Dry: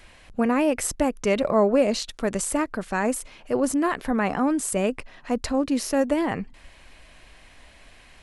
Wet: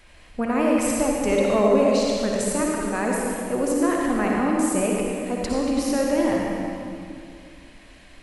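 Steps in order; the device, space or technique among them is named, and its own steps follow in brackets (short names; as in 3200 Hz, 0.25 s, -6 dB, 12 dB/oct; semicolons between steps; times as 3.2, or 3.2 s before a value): stairwell (reverb RT60 2.4 s, pre-delay 50 ms, DRR -2.5 dB); gain -3 dB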